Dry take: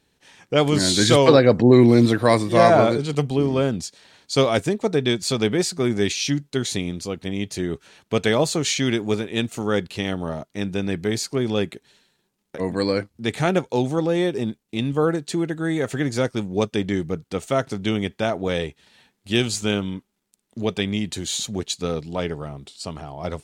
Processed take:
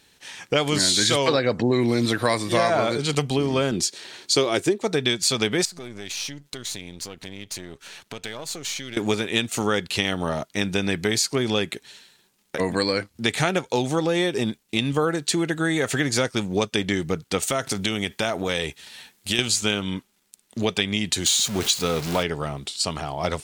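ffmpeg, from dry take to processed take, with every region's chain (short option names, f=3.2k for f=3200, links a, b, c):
-filter_complex "[0:a]asettb=1/sr,asplit=3[a][b][c];[a]atrim=end=3.714[d];[b]atrim=start=3.71:end=4.83,asetpts=PTS-STARTPTS,afade=t=in:d=0.004:c=qsin,afade=t=out:st=1.116:d=0.004:c=qsin,highpass=84,equalizer=f=360:t=o:w=0.43:g=13.5[e];[c]atrim=start=4.826[f];[d][e]acrossfade=d=0.004:c1=hsin:c2=qsin[g];[g][f]acrossfade=d=0.004:c1=qsin:c2=hsin,asettb=1/sr,asplit=3[h][i][j];[h]atrim=end=5.654[k];[i]atrim=start=5.65:end=8.97,asetpts=PTS-STARTPTS,afade=t=in:d=0.004:c=qsin,afade=t=out:st=3.316:d=0.004:c=qsin,aeval=exprs='if(lt(val(0),0),0.447*val(0),val(0))':c=same,acompressor=threshold=-40dB:ratio=4:attack=3.2:release=140:knee=1:detection=peak[l];[j]atrim=start=8.966[m];[k][l]acrossfade=d=0.004:c1=hsin:c2=qsin[n];[n][m]acrossfade=d=0.004:c1=qsin:c2=hsin,asettb=1/sr,asplit=3[o][p][q];[o]atrim=end=17.424[r];[p]atrim=start=17.42:end=19.39,asetpts=PTS-STARTPTS,afade=t=in:d=0.004:c=qsin,afade=t=out:st=1.966:d=0.004:c=qsin,highshelf=f=8.3k:g=8,acompressor=threshold=-26dB:ratio=3:attack=3.2:release=140:knee=1:detection=peak[s];[q]atrim=start=19.386[t];[r][s]acrossfade=d=0.004:c1=hsin:c2=qsin[u];[u][t]acrossfade=d=0.004:c1=qsin:c2=hsin,asettb=1/sr,asplit=3[v][w][x];[v]atrim=end=21.264[y];[w]atrim=start=21.26:end=22.23,asetpts=PTS-STARTPTS,afade=t=in:d=0.004:c=qsin,afade=t=out:st=0.966:d=0.004:c=qsin,aeval=exprs='val(0)+0.5*0.0266*sgn(val(0))':c=same,bandreject=f=1.8k:w=19[z];[x]atrim=start=22.226[aa];[y][z]acrossfade=d=0.004:c1=hsin:c2=qsin[ab];[ab][aa]acrossfade=d=0.004:c1=qsin:c2=hsin,tiltshelf=f=970:g=-5,acompressor=threshold=-27dB:ratio=4,volume=7.5dB"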